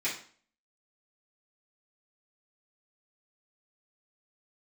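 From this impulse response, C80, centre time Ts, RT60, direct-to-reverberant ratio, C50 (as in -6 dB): 12.0 dB, 28 ms, 0.45 s, -10.5 dB, 6.5 dB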